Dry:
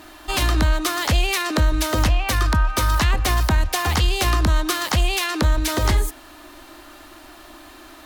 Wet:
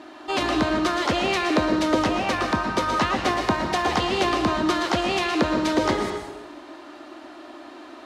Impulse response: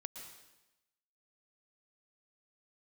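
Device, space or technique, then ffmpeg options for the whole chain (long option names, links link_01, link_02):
supermarket ceiling speaker: -filter_complex "[0:a]highpass=340,lowpass=5300,tiltshelf=frequency=650:gain=7[link_01];[1:a]atrim=start_sample=2205[link_02];[link_01][link_02]afir=irnorm=-1:irlink=0,volume=7.5dB"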